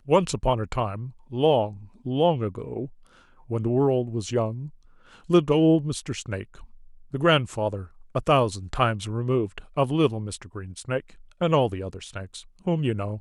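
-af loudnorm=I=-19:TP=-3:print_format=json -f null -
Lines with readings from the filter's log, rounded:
"input_i" : "-25.4",
"input_tp" : "-7.0",
"input_lra" : "4.0",
"input_thresh" : "-36.4",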